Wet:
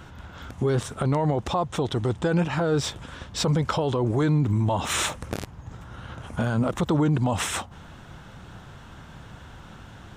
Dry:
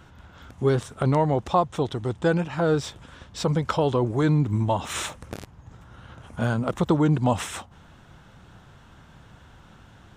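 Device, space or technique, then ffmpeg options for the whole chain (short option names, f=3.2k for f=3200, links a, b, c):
stacked limiters: -af "alimiter=limit=-16dB:level=0:latency=1:release=158,alimiter=limit=-21dB:level=0:latency=1:release=24,volume=6dB"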